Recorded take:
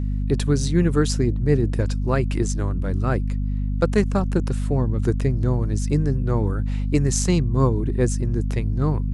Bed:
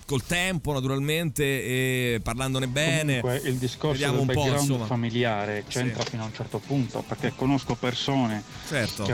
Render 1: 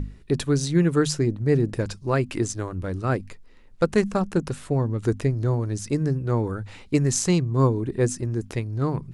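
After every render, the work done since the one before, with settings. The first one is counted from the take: hum notches 50/100/150/200/250 Hz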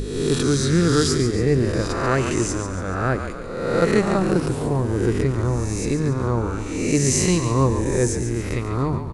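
reverse spectral sustain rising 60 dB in 1.17 s; on a send: frequency-shifting echo 141 ms, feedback 51%, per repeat -46 Hz, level -8.5 dB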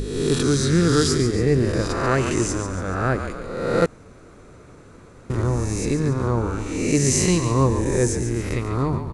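3.86–5.30 s: room tone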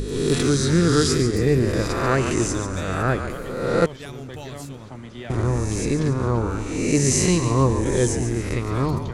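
add bed -12 dB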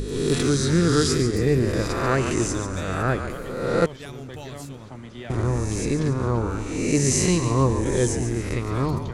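trim -1.5 dB

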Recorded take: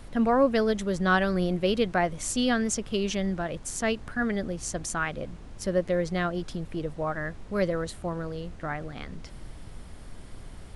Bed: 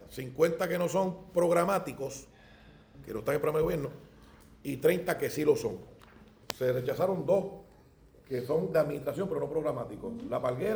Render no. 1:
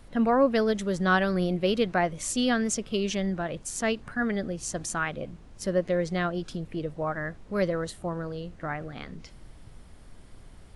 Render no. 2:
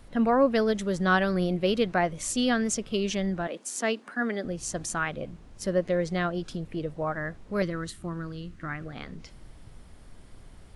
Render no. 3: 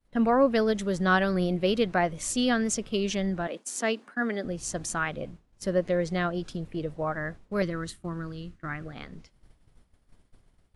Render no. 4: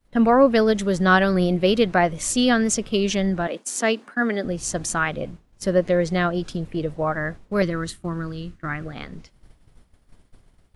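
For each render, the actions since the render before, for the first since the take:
noise print and reduce 6 dB
3.47–4.45 s: steep high-pass 220 Hz; 7.62–8.86 s: high-order bell 640 Hz -10 dB 1.3 oct
expander -36 dBFS
trim +6.5 dB

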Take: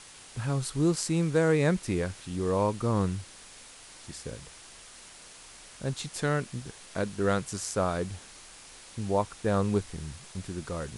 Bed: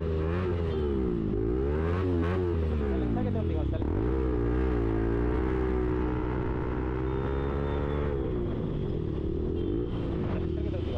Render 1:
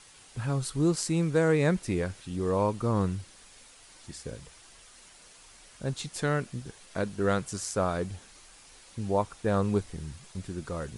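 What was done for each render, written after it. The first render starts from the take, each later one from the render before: noise reduction 6 dB, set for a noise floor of -50 dBFS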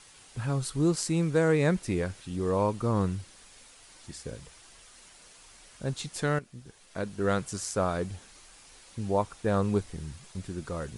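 6.39–7.38 s: fade in, from -13 dB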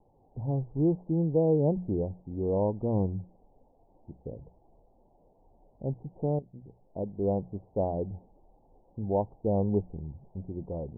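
steep low-pass 870 Hz 72 dB/octave; hum notches 60/120/180 Hz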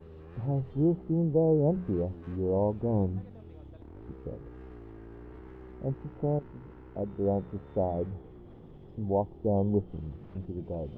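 add bed -19.5 dB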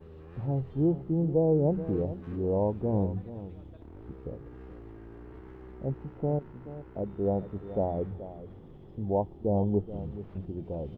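delay 428 ms -14 dB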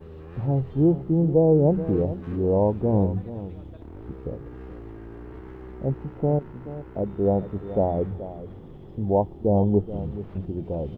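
trim +6.5 dB

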